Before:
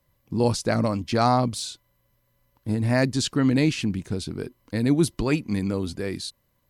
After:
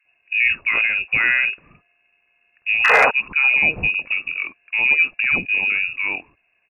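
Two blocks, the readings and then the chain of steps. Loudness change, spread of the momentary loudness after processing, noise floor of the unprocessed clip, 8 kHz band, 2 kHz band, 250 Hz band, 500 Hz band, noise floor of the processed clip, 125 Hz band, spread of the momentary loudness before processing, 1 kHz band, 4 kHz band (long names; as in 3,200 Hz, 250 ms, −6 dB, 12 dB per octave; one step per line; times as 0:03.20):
+7.5 dB, 10 LU, −70 dBFS, below −10 dB, +20.0 dB, −17.0 dB, −3.0 dB, −66 dBFS, −17.0 dB, 12 LU, +3.0 dB, +2.5 dB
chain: high-pass filter 58 Hz 6 dB per octave
voice inversion scrambler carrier 2,700 Hz
in parallel at +1 dB: brickwall limiter −17 dBFS, peak gain reduction 9 dB
on the sum: sound drawn into the spectrogram noise, 0:02.84–0:03.06, 420–2,100 Hz −12 dBFS
gain into a clipping stage and back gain 3.5 dB
multiband delay without the direct sound highs, lows 50 ms, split 1,200 Hz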